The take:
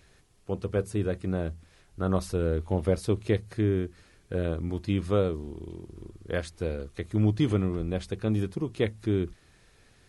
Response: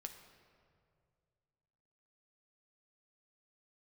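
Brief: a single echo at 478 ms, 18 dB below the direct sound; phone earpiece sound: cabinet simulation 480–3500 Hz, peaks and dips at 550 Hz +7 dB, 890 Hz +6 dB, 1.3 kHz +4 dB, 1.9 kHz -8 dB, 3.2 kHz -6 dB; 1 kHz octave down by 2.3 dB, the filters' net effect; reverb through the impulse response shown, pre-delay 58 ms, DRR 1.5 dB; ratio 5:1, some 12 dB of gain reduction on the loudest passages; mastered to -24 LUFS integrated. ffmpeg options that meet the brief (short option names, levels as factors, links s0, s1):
-filter_complex "[0:a]equalizer=f=1000:t=o:g=-8,acompressor=threshold=0.02:ratio=5,aecho=1:1:478:0.126,asplit=2[s0][s1];[1:a]atrim=start_sample=2205,adelay=58[s2];[s1][s2]afir=irnorm=-1:irlink=0,volume=1.41[s3];[s0][s3]amix=inputs=2:normalize=0,highpass=480,equalizer=f=550:t=q:w=4:g=7,equalizer=f=890:t=q:w=4:g=6,equalizer=f=1300:t=q:w=4:g=4,equalizer=f=1900:t=q:w=4:g=-8,equalizer=f=3200:t=q:w=4:g=-6,lowpass=f=3500:w=0.5412,lowpass=f=3500:w=1.3066,volume=7.94"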